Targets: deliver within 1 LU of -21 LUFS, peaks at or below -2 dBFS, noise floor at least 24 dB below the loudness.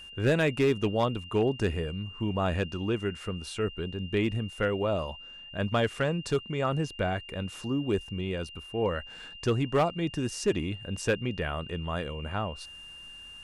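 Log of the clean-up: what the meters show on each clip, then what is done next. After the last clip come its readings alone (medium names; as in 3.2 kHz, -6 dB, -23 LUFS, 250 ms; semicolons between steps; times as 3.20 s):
clipped samples 0.4%; clipping level -18.0 dBFS; steady tone 2.8 kHz; tone level -44 dBFS; loudness -30.0 LUFS; peak level -18.0 dBFS; loudness target -21.0 LUFS
-> clip repair -18 dBFS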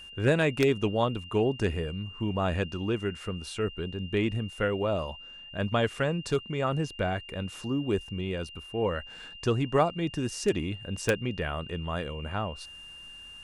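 clipped samples 0.0%; steady tone 2.8 kHz; tone level -44 dBFS
-> band-stop 2.8 kHz, Q 30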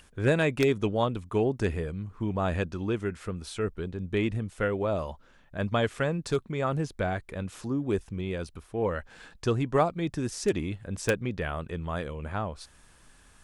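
steady tone not found; loudness -30.0 LUFS; peak level -9.0 dBFS; loudness target -21.0 LUFS
-> trim +9 dB; peak limiter -2 dBFS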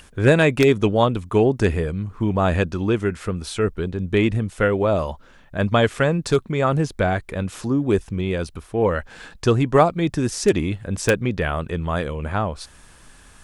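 loudness -21.0 LUFS; peak level -2.0 dBFS; noise floor -49 dBFS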